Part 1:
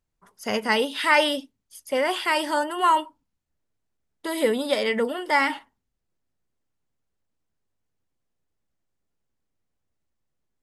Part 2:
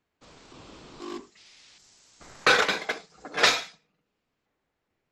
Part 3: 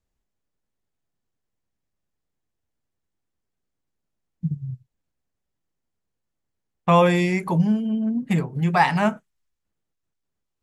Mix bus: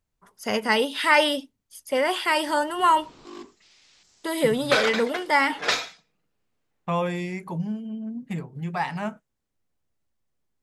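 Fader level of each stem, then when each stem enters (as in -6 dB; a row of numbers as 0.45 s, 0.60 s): +0.5 dB, -3.5 dB, -9.5 dB; 0.00 s, 2.25 s, 0.00 s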